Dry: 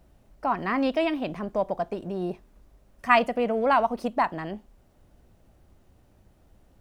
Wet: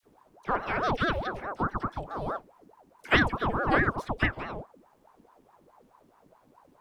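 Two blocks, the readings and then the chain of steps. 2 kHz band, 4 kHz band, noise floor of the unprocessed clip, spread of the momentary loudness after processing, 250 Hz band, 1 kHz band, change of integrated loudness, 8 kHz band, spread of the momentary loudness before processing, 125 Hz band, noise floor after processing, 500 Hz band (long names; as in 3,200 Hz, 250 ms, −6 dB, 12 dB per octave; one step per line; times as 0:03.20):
+2.5 dB, +1.5 dB, −61 dBFS, 14 LU, −4.0 dB, −4.5 dB, −2.5 dB, can't be measured, 14 LU, +7.0 dB, −63 dBFS, −6.5 dB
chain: all-pass dispersion lows, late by 56 ms, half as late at 1,100 Hz
ring modulator whose carrier an LFO sweeps 620 Hz, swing 65%, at 4.7 Hz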